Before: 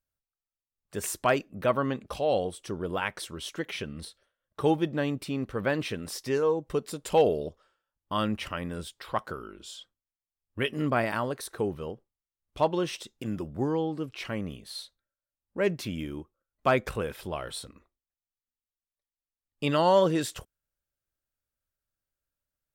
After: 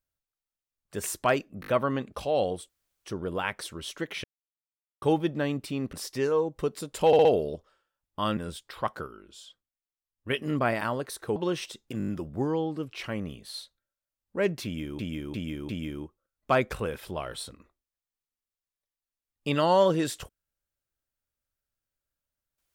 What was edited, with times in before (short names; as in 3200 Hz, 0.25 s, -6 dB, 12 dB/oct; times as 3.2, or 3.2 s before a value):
1.61 stutter 0.02 s, 4 plays
2.63 insert room tone 0.36 s
3.82–4.6 mute
5.51–6.04 cut
7.18 stutter 0.06 s, 4 plays
8.3–8.68 cut
9.38–10.61 gain -5 dB
11.67–12.67 cut
13.29 stutter 0.02 s, 6 plays
15.85–16.2 loop, 4 plays